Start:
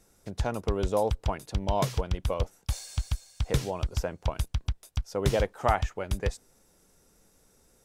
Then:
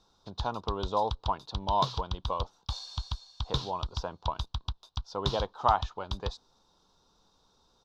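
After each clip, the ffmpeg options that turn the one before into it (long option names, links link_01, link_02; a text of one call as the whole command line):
ffmpeg -i in.wav -af "firequalizer=gain_entry='entry(580,0);entry(990,14);entry(2000,-11);entry(3700,15);entry(8800,-19)':delay=0.05:min_phase=1,volume=-6dB" out.wav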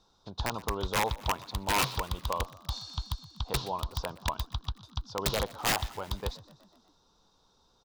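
ffmpeg -i in.wav -filter_complex "[0:a]aeval=exprs='(mod(10*val(0)+1,2)-1)/10':channel_layout=same,asplit=6[link_01][link_02][link_03][link_04][link_05][link_06];[link_02]adelay=123,afreqshift=48,volume=-20dB[link_07];[link_03]adelay=246,afreqshift=96,volume=-24dB[link_08];[link_04]adelay=369,afreqshift=144,volume=-28dB[link_09];[link_05]adelay=492,afreqshift=192,volume=-32dB[link_10];[link_06]adelay=615,afreqshift=240,volume=-36.1dB[link_11];[link_01][link_07][link_08][link_09][link_10][link_11]amix=inputs=6:normalize=0" out.wav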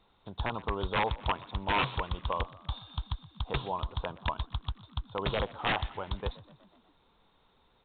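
ffmpeg -i in.wav -ar 8000 -c:a pcm_alaw out.wav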